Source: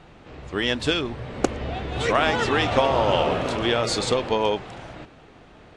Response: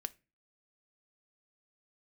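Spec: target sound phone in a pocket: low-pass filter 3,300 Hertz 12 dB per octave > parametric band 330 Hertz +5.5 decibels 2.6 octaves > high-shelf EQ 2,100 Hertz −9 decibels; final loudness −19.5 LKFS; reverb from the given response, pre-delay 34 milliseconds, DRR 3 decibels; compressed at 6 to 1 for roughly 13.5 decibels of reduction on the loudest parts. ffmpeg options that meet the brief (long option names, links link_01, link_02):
-filter_complex "[0:a]acompressor=threshold=-29dB:ratio=6,asplit=2[link_01][link_02];[1:a]atrim=start_sample=2205,adelay=34[link_03];[link_02][link_03]afir=irnorm=-1:irlink=0,volume=-1dB[link_04];[link_01][link_04]amix=inputs=2:normalize=0,lowpass=3300,equalizer=frequency=330:width_type=o:width=2.6:gain=5.5,highshelf=frequency=2100:gain=-9,volume=9.5dB"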